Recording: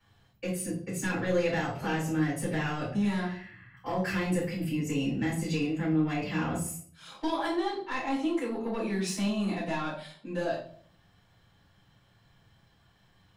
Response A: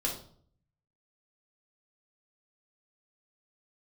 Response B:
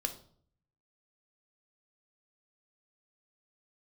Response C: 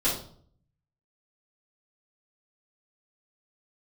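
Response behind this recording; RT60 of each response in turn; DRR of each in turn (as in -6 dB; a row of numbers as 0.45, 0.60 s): C; 0.55, 0.55, 0.55 s; -3.5, 5.5, -11.5 dB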